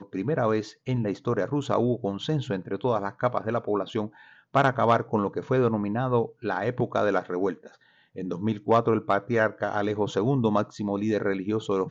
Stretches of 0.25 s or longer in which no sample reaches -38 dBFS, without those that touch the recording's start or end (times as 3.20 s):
4.08–4.54 s
7.67–8.16 s